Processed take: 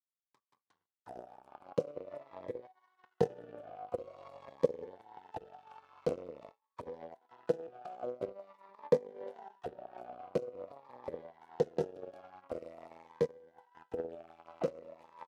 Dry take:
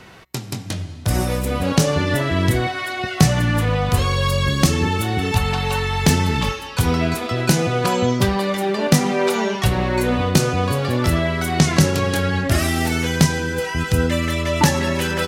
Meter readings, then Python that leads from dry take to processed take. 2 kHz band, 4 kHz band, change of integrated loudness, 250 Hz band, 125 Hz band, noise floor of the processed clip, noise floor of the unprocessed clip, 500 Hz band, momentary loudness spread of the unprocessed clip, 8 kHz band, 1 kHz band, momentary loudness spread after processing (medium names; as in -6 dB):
-35.5 dB, under -35 dB, -20.5 dB, -27.5 dB, -33.0 dB, under -85 dBFS, -33 dBFS, -14.0 dB, 6 LU, under -40 dB, -24.0 dB, 19 LU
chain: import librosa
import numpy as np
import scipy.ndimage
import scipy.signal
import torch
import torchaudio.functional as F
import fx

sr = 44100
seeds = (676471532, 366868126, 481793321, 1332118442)

y = fx.power_curve(x, sr, exponent=3.0)
y = fx.auto_wah(y, sr, base_hz=490.0, top_hz=1200.0, q=6.5, full_db=-30.0, direction='down')
y = fx.notch_cascade(y, sr, direction='falling', hz=0.47)
y = F.gain(torch.from_numpy(y), 7.0).numpy()